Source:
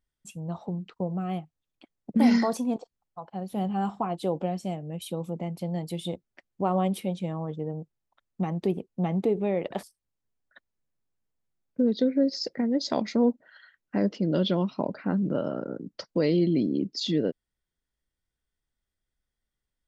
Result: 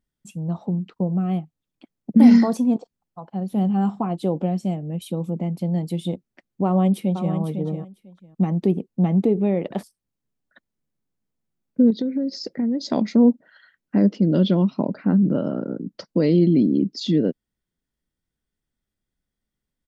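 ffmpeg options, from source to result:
-filter_complex "[0:a]asplit=2[a][b];[b]afade=t=in:st=6.65:d=0.01,afade=t=out:st=7.34:d=0.01,aecho=0:1:500|1000:0.375837|0.0563756[c];[a][c]amix=inputs=2:normalize=0,asettb=1/sr,asplit=3[d][e][f];[d]atrim=end=11.904[g];[e]atrim=start=11.9:end=12.84,asetpts=PTS-STARTPTS,afade=t=in:d=0.004:c=qsin,afade=t=out:st=0.936:d=0.004:c=qsin,acompressor=threshold=-28dB:ratio=4:attack=3.2:release=140:knee=1:detection=peak[h];[f]atrim=start=12.836[i];[g][h]acrossfade=d=0.004:c1=hsin:c2=qsin[j];[j][i]acrossfade=d=0.004:c1=qsin:c2=hsin,equalizer=f=210:w=0.79:g=9.5"

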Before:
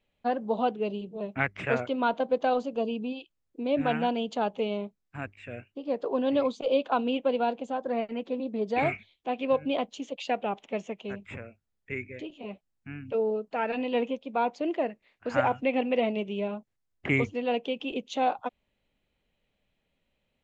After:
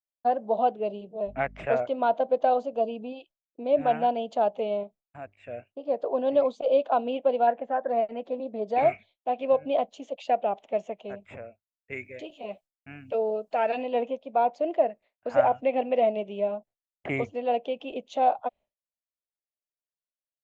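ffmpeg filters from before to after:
-filter_complex "[0:a]asettb=1/sr,asplit=3[a][b][c];[a]atrim=end=1.274[d];[b]atrim=start=1.27:end=1.67,asetpts=PTS-STARTPTS,afade=t=in:d=0.004:c=qsin,afade=t=out:st=0.396:d=0.004:c=qsin,aeval=exprs='val(0)+0.01*(sin(2*PI*50*n/s)+sin(2*PI*2*50*n/s)/2+sin(2*PI*3*50*n/s)/3+sin(2*PI*4*50*n/s)/4+sin(2*PI*5*50*n/s)/5)':c=same[e];[c]atrim=start=1.666[f];[d][e]acrossfade=d=0.004:c1=hsin:c2=qsin[g];[g][f]acrossfade=d=0.004:c1=qsin:c2=hsin,asettb=1/sr,asplit=3[h][i][j];[h]atrim=end=4.834[k];[i]atrim=start=4.83:end=5.37,asetpts=PTS-STARTPTS,afade=t=in:d=0.004:c=qsin,afade=t=out:st=0.536:d=0.004:c=qsin,acompressor=threshold=-43dB:ratio=1.5:attack=3.2:release=140:knee=1:detection=peak[l];[j]atrim=start=5.366[m];[k][l]acrossfade=d=0.004:c1=hsin:c2=qsin[n];[n][m]acrossfade=d=0.004:c1=qsin:c2=hsin,asettb=1/sr,asplit=3[o][p][q];[o]atrim=end=7.474[r];[p]atrim=start=7.47:end=7.89,asetpts=PTS-STARTPTS,afade=t=in:d=0.004:c=qsin,afade=t=out:st=0.416:d=0.004:c=qsin,lowpass=f=1.8k:t=q:w=6.6[s];[q]atrim=start=7.886[t];[r][s]acrossfade=d=0.004:c1=hsin:c2=qsin[u];[u][t]acrossfade=d=0.004:c1=qsin:c2=hsin,asettb=1/sr,asplit=3[v][w][x];[v]atrim=end=11.924[y];[w]atrim=start=11.92:end=13.83,asetpts=PTS-STARTPTS,afade=t=in:d=0.004:c=qsin,afade=t=out:st=1.906:d=0.004:c=qsin,highshelf=f=2.3k:g=11[z];[x]atrim=start=13.826[aa];[y][z]acrossfade=d=0.004:c1=hsin:c2=qsin[ab];[ab][aa]acrossfade=d=0.004:c1=qsin:c2=hsin,agate=range=-33dB:threshold=-48dB:ratio=3:detection=peak,equalizer=f=650:t=o:w=0.82:g=15,volume=-6.5dB"

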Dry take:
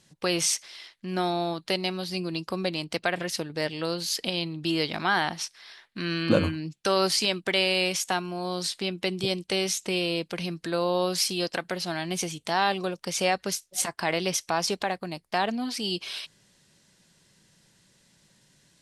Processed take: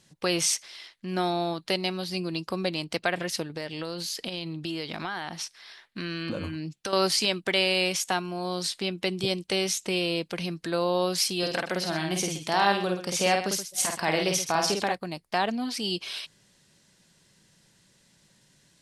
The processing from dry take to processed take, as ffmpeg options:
-filter_complex "[0:a]asettb=1/sr,asplit=3[a][b][c];[a]atrim=end=3.444[d];[b]atrim=start=3.44:end=6.93,asetpts=PTS-STARTPTS,afade=t=in:d=0.004:c=qsin,afade=t=out:st=3.486:d=0.004:c=qsin,acompressor=threshold=-29dB:ratio=5:attack=3.2:release=140:knee=1:detection=peak[e];[c]atrim=start=6.926[f];[d][e]acrossfade=d=0.004:c1=hsin:c2=qsin[g];[g][f]acrossfade=d=0.004:c1=qsin:c2=hsin,asettb=1/sr,asplit=3[h][i][j];[h]atrim=end=11.384[k];[i]atrim=start=11.38:end=14.95,asetpts=PTS-STARTPTS,afade=t=in:d=0.004:c=qsin,afade=t=out:st=3.566:d=0.004:c=qsin,aecho=1:1:50|126:0.631|0.282,atrim=end_sample=157437[l];[j]atrim=start=14.946[m];[k][l]acrossfade=d=0.004:c1=hsin:c2=qsin[n];[n][m]acrossfade=d=0.004:c1=qsin:c2=hsin"

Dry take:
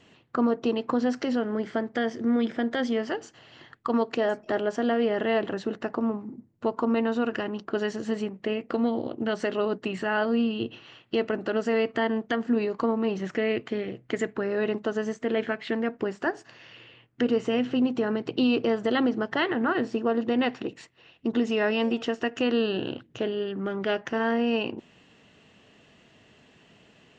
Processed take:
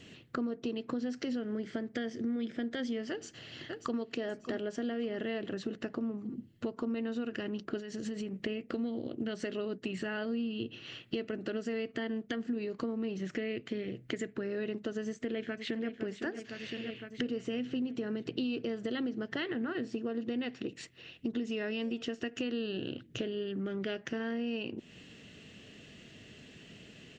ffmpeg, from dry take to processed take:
-filter_complex "[0:a]asplit=2[a][b];[b]afade=t=in:st=3.1:d=0.01,afade=t=out:st=3.98:d=0.01,aecho=0:1:590|1180|1770|2360|2950|3540:0.223872|0.12313|0.0677213|0.0372467|0.0204857|0.0112671[c];[a][c]amix=inputs=2:normalize=0,asettb=1/sr,asplit=3[d][e][f];[d]atrim=end=7.804[g];[e]atrim=start=7.8:end=8.41,asetpts=PTS-STARTPTS,afade=t=in:d=0.004:c=qsin,afade=t=out:st=0.606:d=0.004:c=qsin,acompressor=threshold=-35dB:ratio=4:attack=3.2:release=140:knee=1:detection=peak[h];[f]atrim=start=8.406[i];[g][h]acrossfade=d=0.004:c1=hsin:c2=qsin[j];[j][i]acrossfade=d=0.004:c1=qsin:c2=hsin,asplit=2[k][l];[l]afade=t=in:st=15.06:d=0.01,afade=t=out:st=15.88:d=0.01,aecho=0:1:510|1020|1530|2040|2550|3060|3570|4080:0.266073|0.172947|0.112416|0.0730702|0.0474956|0.0308721|0.0200669|0.0130435[m];[k][m]amix=inputs=2:normalize=0,equalizer=f=920:t=o:w=1.2:g=-13.5,acompressor=threshold=-41dB:ratio=4,volume=6dB"

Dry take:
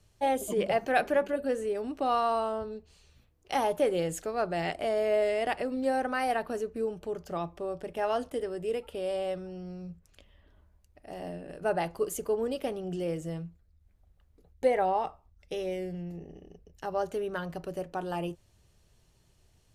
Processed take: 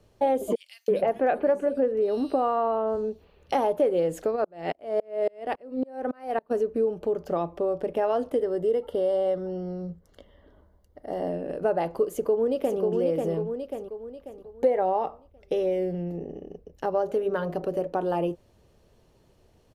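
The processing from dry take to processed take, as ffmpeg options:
-filter_complex "[0:a]asettb=1/sr,asplit=3[a][b][c];[a]atrim=end=0.554[d];[b]atrim=start=0.55:end=3.52,asetpts=PTS-STARTPTS,afade=t=in:d=0.004:c=qsin,afade=t=out:st=2.966:d=0.004:c=qsin,acrossover=split=3300[e][f];[e]adelay=330[g];[g][f]amix=inputs=2:normalize=0,atrim=end_sample=130977[h];[c]atrim=start=3.516[i];[d][h]acrossfade=d=0.004:c1=hsin:c2=qsin[j];[j][i]acrossfade=d=0.004:c1=qsin:c2=hsin,asplit=3[k][l][m];[k]afade=t=out:st=4.35:d=0.02[n];[l]aeval=exprs='val(0)*pow(10,-37*if(lt(mod(-3.6*n/s,1),2*abs(-3.6)/1000),1-mod(-3.6*n/s,1)/(2*abs(-3.6)/1000),(mod(-3.6*n/s,1)-2*abs(-3.6)/1000)/(1-2*abs(-3.6)/1000))/20)':c=same,afade=t=in:st=4.35:d=0.02,afade=t=out:st=6.5:d=0.02[o];[m]afade=t=in:st=6.5:d=0.02[p];[n][o][p]amix=inputs=3:normalize=0,asettb=1/sr,asplit=3[q][r][s];[q]atrim=end=8.424[t];[r]atrim=start=8.42:end=11.3,asetpts=PTS-STARTPTS,afade=t=in:d=0.004:c=qsin,afade=t=out:st=2.876:d=0.004:c=qsin,asuperstop=centerf=2500:order=8:qfactor=5[u];[s]atrim=start=11.296[v];[t][u]acrossfade=d=0.004:c1=hsin:c2=qsin[w];[w][v]acrossfade=d=0.004:c1=qsin:c2=hsin,asplit=2[x][y];[y]afade=t=in:st=12.1:d=0.01,afade=t=out:st=12.8:d=0.01,aecho=0:1:540|1080|1620|2160|2700:0.562341|0.224937|0.0899746|0.0359898|0.0143959[z];[x][z]amix=inputs=2:normalize=0,asettb=1/sr,asplit=3[aa][ab][ac];[aa]atrim=end=16.914[ad];[ab]atrim=start=16.91:end=17.87,asetpts=PTS-STARTPTS,afade=t=in:d=0.004:c=qsin,afade=t=out:st=0.956:d=0.004:c=qsin,bandreject=f=50.94:t=h:w=4,bandreject=f=101.88:t=h:w=4,bandreject=f=152.82:t=h:w=4,bandreject=f=203.76:t=h:w=4,bandreject=f=254.7:t=h:w=4,bandreject=f=305.64:t=h:w=4,bandreject=f=356.58:t=h:w=4,bandreject=f=407.52:t=h:w=4,bandreject=f=458.46:t=h:w=4,bandreject=f=509.4:t=h:w=4,bandreject=f=560.34:t=h:w=4,bandreject=f=611.28:t=h:w=4,bandreject=f=662.22:t=h:w=4,bandreject=f=713.16:t=h:w=4,bandreject=f=764.1:t=h:w=4,bandreject=f=815.04:t=h:w=4[ae];[ac]atrim=start=17.866[af];[ad][ae]acrossfade=d=0.004:c1=hsin:c2=qsin[ag];[ag][af]acrossfade=d=0.004:c1=qsin:c2=hsin,equalizer=f=250:t=o:w=1:g=7,equalizer=f=500:t=o:w=1:g=10,equalizer=f=1k:t=o:w=1:g=4,equalizer=f=8k:t=o:w=1:g=-6,acompressor=threshold=-25dB:ratio=2.5,volume=1.5dB"

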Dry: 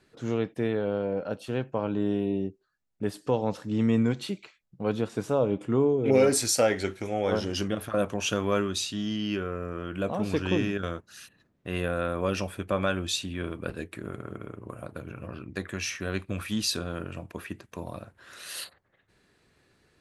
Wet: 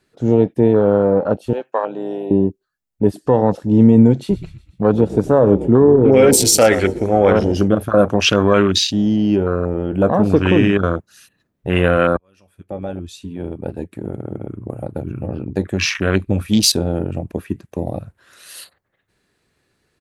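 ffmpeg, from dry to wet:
-filter_complex "[0:a]asettb=1/sr,asplit=3[a][b][c];[a]atrim=end=1.534[d];[b]atrim=start=1.53:end=2.31,asetpts=PTS-STARTPTS,afade=t=in:d=0.004:c=qsin,afade=t=out:st=0.776:d=0.004:c=qsin,highpass=670[e];[c]atrim=start=2.306[f];[d][e]acrossfade=d=0.004:c1=hsin:c2=qsin[g];[g][f]acrossfade=d=0.004:c1=qsin:c2=hsin,asplit=3[h][i][j];[h]afade=t=out:st=4.29:d=0.02[k];[i]asplit=6[l][m][n][o][p][q];[m]adelay=122,afreqshift=-36,volume=-15.5dB[r];[n]adelay=244,afreqshift=-72,volume=-21dB[s];[o]adelay=366,afreqshift=-108,volume=-26.5dB[t];[p]adelay=488,afreqshift=-144,volume=-32dB[u];[q]adelay=610,afreqshift=-180,volume=-37.6dB[v];[l][r][s][t][u][v]amix=inputs=6:normalize=0,afade=t=in:st=4.29:d=0.02,afade=t=out:st=7.57:d=0.02[w];[j]afade=t=in:st=7.57:d=0.02[x];[k][w][x]amix=inputs=3:normalize=0,asplit=2[y][z];[y]atrim=end=12.17,asetpts=PTS-STARTPTS,afade=t=out:st=12.166:d=0.004:c=hsin[aa];[z]atrim=start=12.17,asetpts=PTS-STARTPTS,afade=t=in:d=2.97[ab];[aa][ab]concat=n=2:v=0:a=1,afwtdn=0.0178,highshelf=f=8.5k:g=7,alimiter=level_in=16dB:limit=-1dB:release=50:level=0:latency=1,volume=-1dB"

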